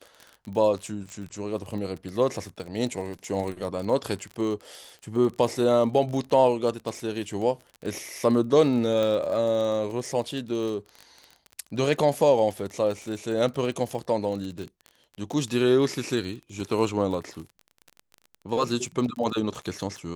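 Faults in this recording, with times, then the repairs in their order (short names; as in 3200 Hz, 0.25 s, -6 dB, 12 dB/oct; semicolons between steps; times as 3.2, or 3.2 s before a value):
crackle 29/s -32 dBFS
9.03 pop -16 dBFS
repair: de-click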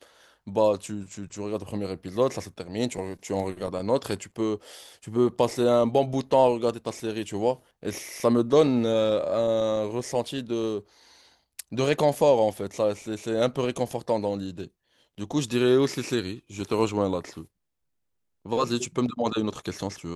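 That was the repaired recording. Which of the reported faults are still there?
none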